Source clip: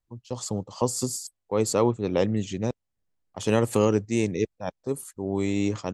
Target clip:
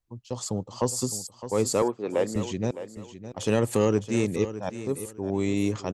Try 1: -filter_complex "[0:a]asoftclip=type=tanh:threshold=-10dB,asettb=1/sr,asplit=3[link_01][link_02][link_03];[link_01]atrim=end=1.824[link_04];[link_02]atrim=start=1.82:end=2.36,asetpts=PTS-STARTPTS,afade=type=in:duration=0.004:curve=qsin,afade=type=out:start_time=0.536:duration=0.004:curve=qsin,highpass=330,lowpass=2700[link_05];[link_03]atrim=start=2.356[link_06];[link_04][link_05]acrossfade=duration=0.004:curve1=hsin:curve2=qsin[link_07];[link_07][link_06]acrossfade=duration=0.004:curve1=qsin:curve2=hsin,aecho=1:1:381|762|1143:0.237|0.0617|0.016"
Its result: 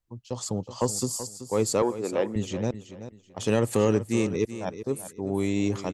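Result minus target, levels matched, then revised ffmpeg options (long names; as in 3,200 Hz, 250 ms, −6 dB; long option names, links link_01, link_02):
echo 230 ms early
-filter_complex "[0:a]asoftclip=type=tanh:threshold=-10dB,asettb=1/sr,asplit=3[link_01][link_02][link_03];[link_01]atrim=end=1.824[link_04];[link_02]atrim=start=1.82:end=2.36,asetpts=PTS-STARTPTS,afade=type=in:duration=0.004:curve=qsin,afade=type=out:start_time=0.536:duration=0.004:curve=qsin,highpass=330,lowpass=2700[link_05];[link_03]atrim=start=2.356[link_06];[link_04][link_05]acrossfade=duration=0.004:curve1=hsin:curve2=qsin[link_07];[link_07][link_06]acrossfade=duration=0.004:curve1=qsin:curve2=hsin,aecho=1:1:611|1222|1833:0.237|0.0617|0.016"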